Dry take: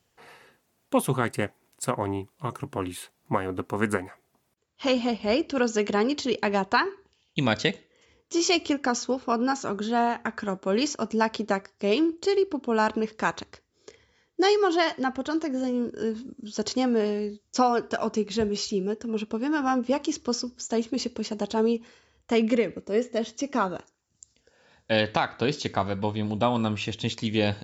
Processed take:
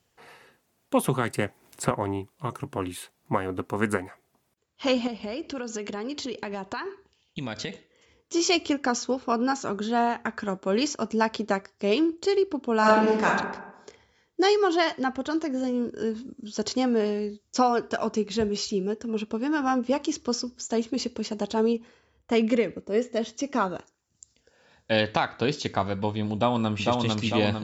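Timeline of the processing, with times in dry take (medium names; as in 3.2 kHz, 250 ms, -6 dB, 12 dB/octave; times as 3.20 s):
1.04–1.91 s: three bands compressed up and down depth 100%
5.07–7.72 s: compression, threshold -29 dBFS
12.79–13.26 s: reverb throw, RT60 0.94 s, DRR -5 dB
21.73–22.99 s: tape noise reduction on one side only decoder only
26.34–26.87 s: echo throw 450 ms, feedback 55%, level -1.5 dB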